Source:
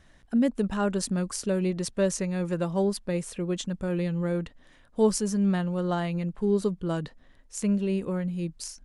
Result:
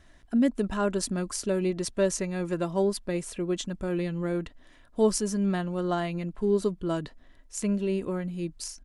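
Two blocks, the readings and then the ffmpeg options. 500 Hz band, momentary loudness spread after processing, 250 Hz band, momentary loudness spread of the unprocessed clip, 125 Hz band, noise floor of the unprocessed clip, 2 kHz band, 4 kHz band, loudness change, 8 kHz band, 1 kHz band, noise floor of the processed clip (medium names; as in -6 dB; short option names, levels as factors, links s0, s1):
+0.5 dB, 8 LU, -1.5 dB, 7 LU, -3.0 dB, -57 dBFS, +0.5 dB, +0.5 dB, -1.0 dB, +0.5 dB, +0.5 dB, -55 dBFS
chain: -af "aecho=1:1:3:0.34"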